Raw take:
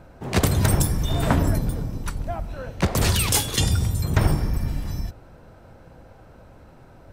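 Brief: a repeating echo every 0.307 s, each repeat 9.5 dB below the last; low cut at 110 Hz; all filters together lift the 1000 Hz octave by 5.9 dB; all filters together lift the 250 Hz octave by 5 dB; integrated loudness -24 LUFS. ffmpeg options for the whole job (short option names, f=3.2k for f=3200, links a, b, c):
-af "highpass=110,equalizer=f=250:t=o:g=7,equalizer=f=1k:t=o:g=7,aecho=1:1:307|614|921|1228:0.335|0.111|0.0365|0.012,volume=-2dB"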